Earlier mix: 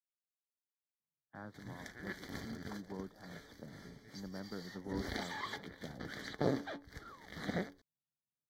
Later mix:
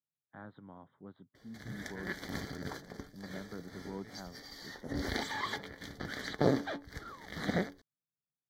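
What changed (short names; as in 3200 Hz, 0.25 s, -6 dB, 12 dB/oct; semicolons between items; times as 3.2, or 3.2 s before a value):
speech: entry -1.00 s; background +5.5 dB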